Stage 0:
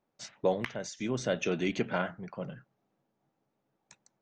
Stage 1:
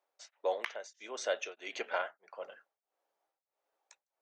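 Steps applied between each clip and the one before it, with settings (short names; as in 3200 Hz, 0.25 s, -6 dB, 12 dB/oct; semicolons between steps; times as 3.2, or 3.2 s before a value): HPF 500 Hz 24 dB/oct; beating tremolo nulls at 1.6 Hz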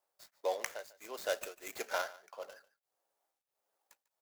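median filter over 15 samples; pre-emphasis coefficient 0.8; echo 0.146 s -19.5 dB; gain +12 dB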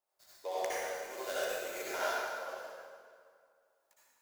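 reverb RT60 2.1 s, pre-delay 53 ms, DRR -9.5 dB; gain -7 dB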